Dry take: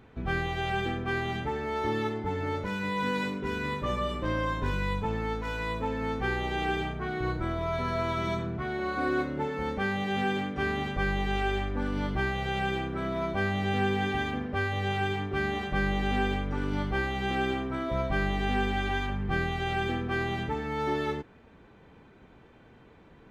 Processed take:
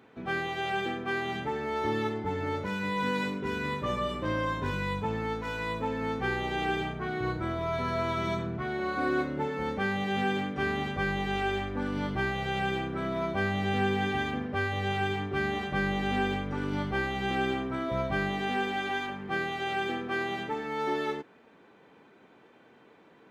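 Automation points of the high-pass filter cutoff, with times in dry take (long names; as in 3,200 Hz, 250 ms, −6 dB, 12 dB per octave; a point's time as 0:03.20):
0:01.20 210 Hz
0:01.81 85 Hz
0:18.14 85 Hz
0:18.57 250 Hz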